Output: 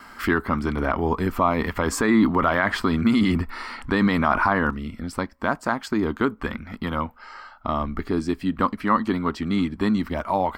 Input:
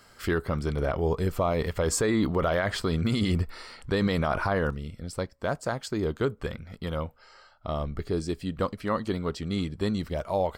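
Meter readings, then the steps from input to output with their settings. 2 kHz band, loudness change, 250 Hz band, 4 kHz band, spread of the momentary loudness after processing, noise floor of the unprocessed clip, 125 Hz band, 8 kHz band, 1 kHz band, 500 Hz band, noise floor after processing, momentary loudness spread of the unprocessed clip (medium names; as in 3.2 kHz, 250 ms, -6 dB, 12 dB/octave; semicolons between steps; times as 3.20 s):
+8.5 dB, +5.5 dB, +8.0 dB, +2.0 dB, 12 LU, -56 dBFS, +0.5 dB, -1.5 dB, +9.5 dB, +1.0 dB, -48 dBFS, 9 LU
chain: gate with hold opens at -51 dBFS; graphic EQ 125/250/500/1000/2000/4000/8000 Hz -11/+11/-9/+9/+4/-3/-6 dB; in parallel at -0.5 dB: compression, threshold -39 dBFS, peak gain reduction 20 dB; on the sum: trim +2.5 dB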